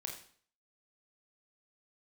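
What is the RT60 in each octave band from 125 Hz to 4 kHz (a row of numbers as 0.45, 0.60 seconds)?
0.55, 0.50, 0.50, 0.50, 0.50, 0.50 seconds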